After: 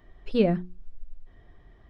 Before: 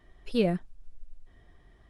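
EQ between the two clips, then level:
head-to-tape spacing loss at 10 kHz 30 dB
high-shelf EQ 4,200 Hz +11.5 dB
mains-hum notches 60/120/180/240/300/360 Hz
+5.0 dB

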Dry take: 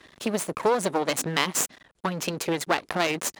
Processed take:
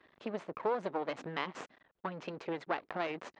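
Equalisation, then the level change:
high-frequency loss of the air 100 metres
head-to-tape spacing loss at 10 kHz 28 dB
low-shelf EQ 250 Hz −11 dB
−6.0 dB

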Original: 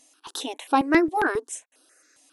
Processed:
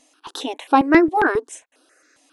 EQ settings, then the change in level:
low-pass filter 3,000 Hz 6 dB per octave
+6.0 dB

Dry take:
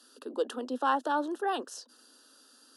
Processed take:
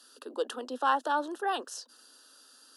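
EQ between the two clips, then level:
high-pass filter 590 Hz 6 dB per octave
+2.5 dB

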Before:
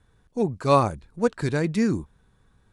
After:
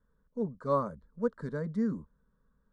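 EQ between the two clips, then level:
low-pass filter 3,500 Hz 6 dB per octave
high-shelf EQ 2,500 Hz −12 dB
phaser with its sweep stopped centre 510 Hz, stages 8
−7.0 dB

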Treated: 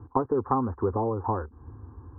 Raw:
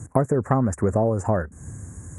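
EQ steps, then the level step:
low-pass with resonance 1,000 Hz, resonance Q 2.2
high-frequency loss of the air 320 metres
phaser with its sweep stopped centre 620 Hz, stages 6
−2.0 dB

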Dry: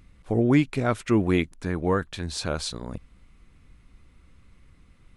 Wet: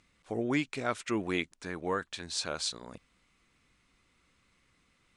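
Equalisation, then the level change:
low-pass filter 8,700 Hz 24 dB per octave
spectral tilt +2 dB per octave
low-shelf EQ 130 Hz −9.5 dB
−5.5 dB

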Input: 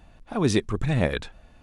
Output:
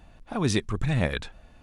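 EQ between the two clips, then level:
dynamic equaliser 410 Hz, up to −5 dB, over −32 dBFS, Q 0.71
0.0 dB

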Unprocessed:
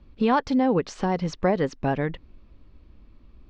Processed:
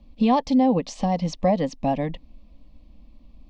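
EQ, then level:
phaser with its sweep stopped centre 390 Hz, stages 6
notch filter 910 Hz, Q 16
+4.0 dB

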